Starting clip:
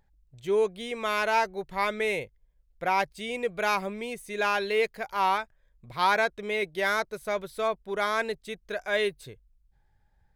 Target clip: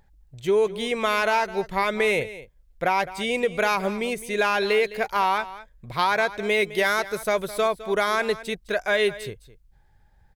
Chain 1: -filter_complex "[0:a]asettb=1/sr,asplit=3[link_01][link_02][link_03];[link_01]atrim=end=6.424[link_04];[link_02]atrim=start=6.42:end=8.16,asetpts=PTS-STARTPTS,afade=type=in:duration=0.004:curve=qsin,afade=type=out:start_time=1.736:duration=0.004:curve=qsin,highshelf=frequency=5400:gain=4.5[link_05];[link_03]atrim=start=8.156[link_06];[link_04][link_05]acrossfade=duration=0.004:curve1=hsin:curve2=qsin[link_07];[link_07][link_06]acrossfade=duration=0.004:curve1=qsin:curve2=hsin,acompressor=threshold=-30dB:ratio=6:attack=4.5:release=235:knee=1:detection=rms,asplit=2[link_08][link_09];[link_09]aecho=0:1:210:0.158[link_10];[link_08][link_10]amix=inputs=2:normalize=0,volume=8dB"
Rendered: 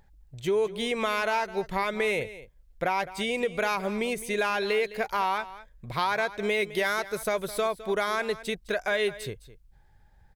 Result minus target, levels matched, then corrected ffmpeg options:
downward compressor: peak gain reduction +5 dB
-filter_complex "[0:a]asettb=1/sr,asplit=3[link_01][link_02][link_03];[link_01]atrim=end=6.424[link_04];[link_02]atrim=start=6.42:end=8.16,asetpts=PTS-STARTPTS,afade=type=in:duration=0.004:curve=qsin,afade=type=out:start_time=1.736:duration=0.004:curve=qsin,highshelf=frequency=5400:gain=4.5[link_05];[link_03]atrim=start=8.156[link_06];[link_04][link_05]acrossfade=duration=0.004:curve1=hsin:curve2=qsin[link_07];[link_07][link_06]acrossfade=duration=0.004:curve1=qsin:curve2=hsin,acompressor=threshold=-24dB:ratio=6:attack=4.5:release=235:knee=1:detection=rms,asplit=2[link_08][link_09];[link_09]aecho=0:1:210:0.158[link_10];[link_08][link_10]amix=inputs=2:normalize=0,volume=8dB"

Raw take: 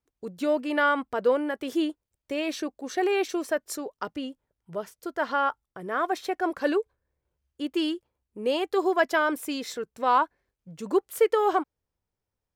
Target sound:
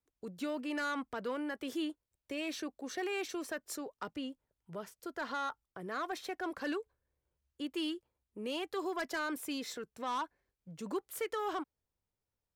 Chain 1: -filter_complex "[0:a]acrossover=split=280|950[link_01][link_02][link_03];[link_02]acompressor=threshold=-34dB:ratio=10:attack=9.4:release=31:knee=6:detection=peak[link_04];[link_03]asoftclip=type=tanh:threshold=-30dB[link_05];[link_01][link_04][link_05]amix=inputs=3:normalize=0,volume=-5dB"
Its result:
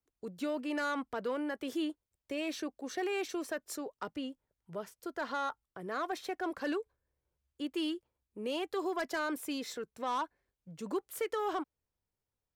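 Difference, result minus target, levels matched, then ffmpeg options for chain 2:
downward compressor: peak gain reduction −6 dB
-filter_complex "[0:a]acrossover=split=280|950[link_01][link_02][link_03];[link_02]acompressor=threshold=-40.5dB:ratio=10:attack=9.4:release=31:knee=6:detection=peak[link_04];[link_03]asoftclip=type=tanh:threshold=-30dB[link_05];[link_01][link_04][link_05]amix=inputs=3:normalize=0,volume=-5dB"

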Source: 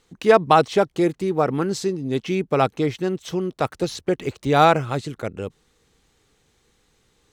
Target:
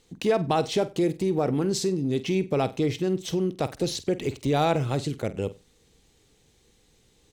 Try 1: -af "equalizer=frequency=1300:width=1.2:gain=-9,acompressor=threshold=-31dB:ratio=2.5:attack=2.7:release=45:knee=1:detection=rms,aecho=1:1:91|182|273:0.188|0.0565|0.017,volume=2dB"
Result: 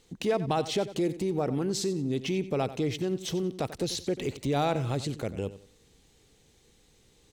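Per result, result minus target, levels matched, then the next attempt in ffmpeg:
echo 43 ms late; downward compressor: peak gain reduction +4 dB
-af "equalizer=frequency=1300:width=1.2:gain=-9,acompressor=threshold=-31dB:ratio=2.5:attack=2.7:release=45:knee=1:detection=rms,aecho=1:1:48|96|144:0.188|0.0565|0.017,volume=2dB"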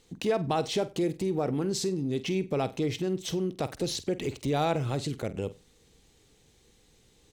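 downward compressor: peak gain reduction +4 dB
-af "equalizer=frequency=1300:width=1.2:gain=-9,acompressor=threshold=-24dB:ratio=2.5:attack=2.7:release=45:knee=1:detection=rms,aecho=1:1:48|96|144:0.188|0.0565|0.017,volume=2dB"

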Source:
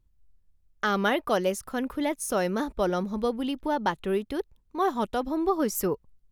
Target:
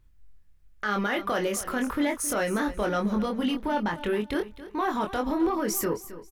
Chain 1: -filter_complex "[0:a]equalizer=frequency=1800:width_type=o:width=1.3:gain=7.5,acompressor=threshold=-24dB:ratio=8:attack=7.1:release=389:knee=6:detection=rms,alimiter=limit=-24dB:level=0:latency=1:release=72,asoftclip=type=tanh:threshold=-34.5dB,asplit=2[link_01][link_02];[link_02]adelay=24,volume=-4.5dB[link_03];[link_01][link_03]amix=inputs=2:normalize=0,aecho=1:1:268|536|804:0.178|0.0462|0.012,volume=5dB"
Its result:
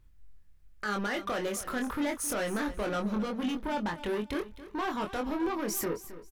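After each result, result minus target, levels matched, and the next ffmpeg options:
downward compressor: peak gain reduction +11 dB; soft clipping: distortion +13 dB
-filter_complex "[0:a]equalizer=frequency=1800:width_type=o:width=1.3:gain=7.5,alimiter=limit=-24dB:level=0:latency=1:release=72,asoftclip=type=tanh:threshold=-34.5dB,asplit=2[link_01][link_02];[link_02]adelay=24,volume=-4.5dB[link_03];[link_01][link_03]amix=inputs=2:normalize=0,aecho=1:1:268|536|804:0.178|0.0462|0.012,volume=5dB"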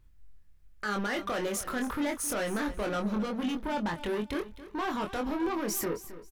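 soft clipping: distortion +14 dB
-filter_complex "[0:a]equalizer=frequency=1800:width_type=o:width=1.3:gain=7.5,alimiter=limit=-24dB:level=0:latency=1:release=72,asoftclip=type=tanh:threshold=-23.5dB,asplit=2[link_01][link_02];[link_02]adelay=24,volume=-4.5dB[link_03];[link_01][link_03]amix=inputs=2:normalize=0,aecho=1:1:268|536|804:0.178|0.0462|0.012,volume=5dB"

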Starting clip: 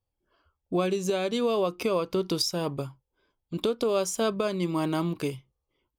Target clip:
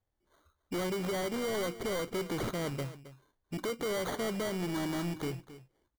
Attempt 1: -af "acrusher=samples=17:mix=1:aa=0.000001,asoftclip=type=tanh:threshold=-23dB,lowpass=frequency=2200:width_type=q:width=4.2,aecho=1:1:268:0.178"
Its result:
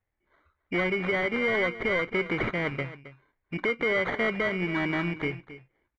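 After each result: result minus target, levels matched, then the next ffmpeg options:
2,000 Hz band +7.5 dB; soft clipping: distortion −7 dB
-af "acrusher=samples=17:mix=1:aa=0.000001,asoftclip=type=tanh:threshold=-23dB,aecho=1:1:268:0.178"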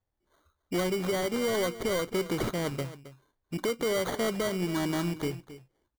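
soft clipping: distortion −7 dB
-af "acrusher=samples=17:mix=1:aa=0.000001,asoftclip=type=tanh:threshold=-31dB,aecho=1:1:268:0.178"

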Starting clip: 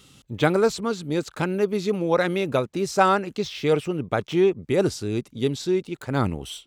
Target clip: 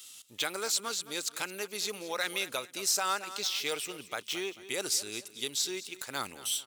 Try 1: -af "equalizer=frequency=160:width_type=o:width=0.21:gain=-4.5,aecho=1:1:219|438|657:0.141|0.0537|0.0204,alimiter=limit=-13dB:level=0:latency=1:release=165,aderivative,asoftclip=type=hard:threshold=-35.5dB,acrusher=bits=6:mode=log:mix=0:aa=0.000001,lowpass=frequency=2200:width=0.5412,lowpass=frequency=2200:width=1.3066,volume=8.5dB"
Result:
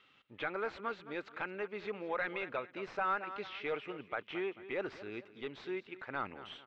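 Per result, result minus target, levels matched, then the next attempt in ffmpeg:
hard clipping: distortion +14 dB; 2,000 Hz band +4.0 dB
-af "equalizer=frequency=160:width_type=o:width=0.21:gain=-4.5,aecho=1:1:219|438|657:0.141|0.0537|0.0204,alimiter=limit=-13dB:level=0:latency=1:release=165,aderivative,asoftclip=type=hard:threshold=-28.5dB,acrusher=bits=6:mode=log:mix=0:aa=0.000001,lowpass=frequency=2200:width=0.5412,lowpass=frequency=2200:width=1.3066,volume=8.5dB"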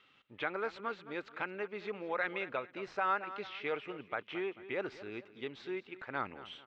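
2,000 Hz band +4.0 dB
-af "equalizer=frequency=160:width_type=o:width=0.21:gain=-4.5,aecho=1:1:219|438|657:0.141|0.0537|0.0204,alimiter=limit=-13dB:level=0:latency=1:release=165,aderivative,asoftclip=type=hard:threshold=-28.5dB,acrusher=bits=6:mode=log:mix=0:aa=0.000001,volume=8.5dB"

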